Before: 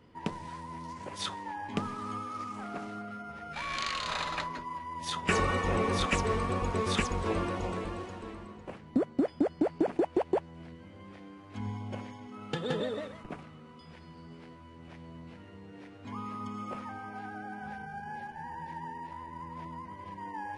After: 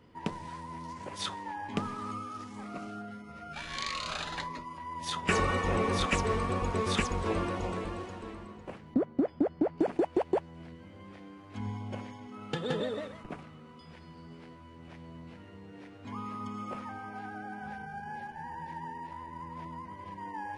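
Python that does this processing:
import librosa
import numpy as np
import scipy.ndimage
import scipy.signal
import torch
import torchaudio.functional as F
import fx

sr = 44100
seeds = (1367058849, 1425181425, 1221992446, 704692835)

y = fx.notch_cascade(x, sr, direction='rising', hz=1.6, at=(2.11, 4.78))
y = fx.lowpass(y, sr, hz=1600.0, slope=6, at=(8.94, 9.78))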